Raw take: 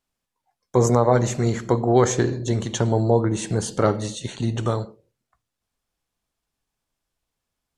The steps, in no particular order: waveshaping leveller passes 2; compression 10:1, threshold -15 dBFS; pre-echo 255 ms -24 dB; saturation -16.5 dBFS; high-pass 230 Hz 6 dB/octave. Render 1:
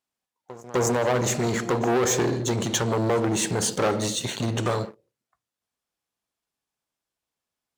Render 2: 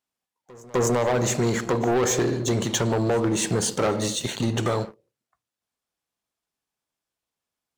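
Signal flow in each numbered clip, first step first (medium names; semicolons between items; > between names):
compression > pre-echo > waveshaping leveller > saturation > high-pass; high-pass > waveshaping leveller > compression > saturation > pre-echo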